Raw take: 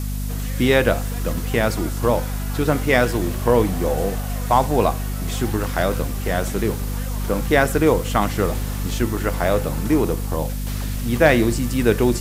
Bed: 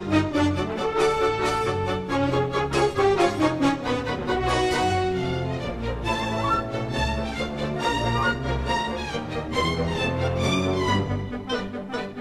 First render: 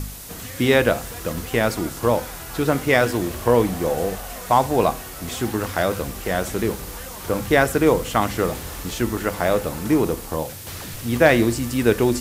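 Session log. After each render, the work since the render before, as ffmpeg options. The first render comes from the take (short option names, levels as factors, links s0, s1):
-af "bandreject=f=50:t=h:w=4,bandreject=f=100:t=h:w=4,bandreject=f=150:t=h:w=4,bandreject=f=200:t=h:w=4,bandreject=f=250:t=h:w=4"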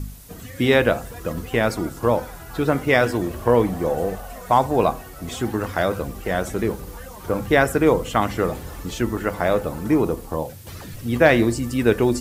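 -af "afftdn=nr=10:nf=-36"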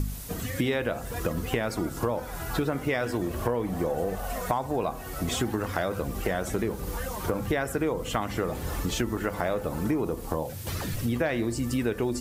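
-filter_complex "[0:a]asplit=2[s0][s1];[s1]alimiter=limit=0.2:level=0:latency=1,volume=0.708[s2];[s0][s2]amix=inputs=2:normalize=0,acompressor=threshold=0.0562:ratio=6"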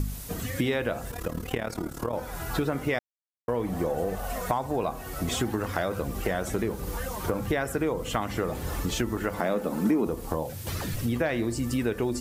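-filter_complex "[0:a]asettb=1/sr,asplit=3[s0][s1][s2];[s0]atrim=end=1.114[s3];[s1]atrim=start=1.11:end=2.13,asetpts=PTS-STARTPTS,afade=t=in:d=0.004:c=qsin,afade=t=out:st=1.016:d=0.004:c=qsin,tremolo=f=37:d=0.788[s4];[s2]atrim=start=2.126[s5];[s3][s4]acrossfade=d=0.004:c1=hsin:c2=qsin[s6];[s6][s5]acrossfade=d=0.004:c1=qsin:c2=hsin,asettb=1/sr,asplit=3[s7][s8][s9];[s7]atrim=end=9.394[s10];[s8]atrim=start=9.39:end=10.07,asetpts=PTS-STARTPTS,afade=t=in:d=0.004:c=qsin,afade=t=out:st=0.676:d=0.004:c=qsin,lowshelf=f=150:t=q:w=3:g=-10.5[s11];[s9]atrim=start=10.066[s12];[s10][s11]acrossfade=d=0.004:c1=hsin:c2=qsin[s13];[s13][s12]acrossfade=d=0.004:c1=qsin:c2=hsin,asplit=3[s14][s15][s16];[s14]atrim=end=2.99,asetpts=PTS-STARTPTS,afade=t=out:st=2.986:d=0.004:c=hsin[s17];[s15]atrim=start=2.99:end=3.48,asetpts=PTS-STARTPTS,volume=0[s18];[s16]atrim=start=3.48,asetpts=PTS-STARTPTS,afade=t=in:d=0.004:c=hsin[s19];[s17][s18][s19]concat=n=3:v=0:a=1"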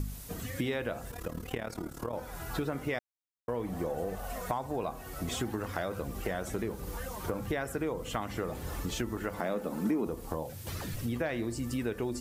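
-af "volume=0.501"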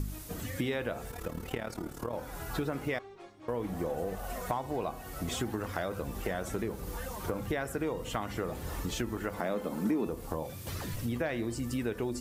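-filter_complex "[1:a]volume=0.0299[s0];[0:a][s0]amix=inputs=2:normalize=0"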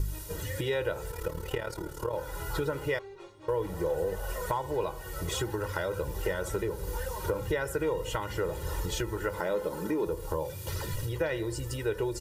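-af "bandreject=f=2300:w=15,aecho=1:1:2.1:0.97"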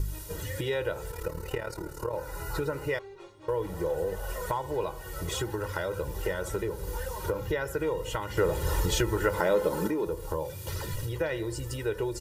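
-filter_complex "[0:a]asettb=1/sr,asplit=3[s0][s1][s2];[s0]atrim=end=1.234[s3];[s1]atrim=start=1.23:end=2.94,asetpts=PTS-STARTPTS,afade=t=in:d=0.004:c=qsin,afade=t=out:st=1.706:d=0.004:c=qsin,bandreject=f=3300:w=5.5[s4];[s2]atrim=start=2.936[s5];[s3][s4]acrossfade=d=0.004:c1=hsin:c2=qsin[s6];[s6][s5]acrossfade=d=0.004:c1=qsin:c2=hsin,asettb=1/sr,asplit=3[s7][s8][s9];[s7]atrim=end=7.324[s10];[s8]atrim=start=7.32:end=7.77,asetpts=PTS-STARTPTS,afade=t=in:d=0.004:c=qsin,afade=t=out:st=0.446:d=0.004:c=qsin,equalizer=f=8800:w=4.3:g=-11[s11];[s9]atrim=start=7.766[s12];[s10][s11]acrossfade=d=0.004:c1=hsin:c2=qsin[s13];[s13][s12]acrossfade=d=0.004:c1=qsin:c2=hsin,asettb=1/sr,asplit=3[s14][s15][s16];[s14]atrim=end=8.374[s17];[s15]atrim=start=8.37:end=9.88,asetpts=PTS-STARTPTS,afade=t=in:d=0.004:c=qsin,afade=t=out:st=1.506:d=0.004:c=qsin,acontrast=45[s18];[s16]atrim=start=9.876[s19];[s17][s18]acrossfade=d=0.004:c1=hsin:c2=qsin[s20];[s20][s19]acrossfade=d=0.004:c1=qsin:c2=hsin"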